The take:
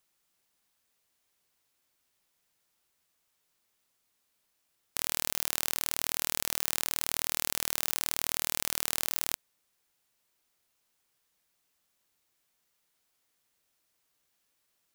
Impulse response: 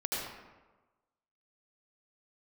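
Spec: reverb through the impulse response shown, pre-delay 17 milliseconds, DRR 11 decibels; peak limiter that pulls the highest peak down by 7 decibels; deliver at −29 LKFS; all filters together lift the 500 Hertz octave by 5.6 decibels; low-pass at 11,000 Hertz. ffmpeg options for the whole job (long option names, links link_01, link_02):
-filter_complex "[0:a]lowpass=11000,equalizer=frequency=500:width_type=o:gain=7,alimiter=limit=-14dB:level=0:latency=1,asplit=2[link_01][link_02];[1:a]atrim=start_sample=2205,adelay=17[link_03];[link_02][link_03]afir=irnorm=-1:irlink=0,volume=-16.5dB[link_04];[link_01][link_04]amix=inputs=2:normalize=0,volume=11dB"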